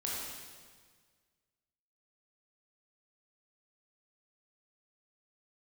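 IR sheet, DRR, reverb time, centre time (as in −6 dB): −5.0 dB, 1.6 s, 106 ms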